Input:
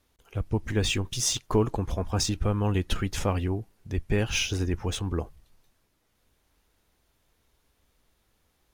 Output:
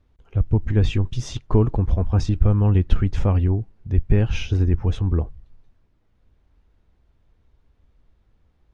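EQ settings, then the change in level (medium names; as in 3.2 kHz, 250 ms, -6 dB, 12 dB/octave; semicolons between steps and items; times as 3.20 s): tape spacing loss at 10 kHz 23 dB; bass shelf 180 Hz +12 dB; +1.5 dB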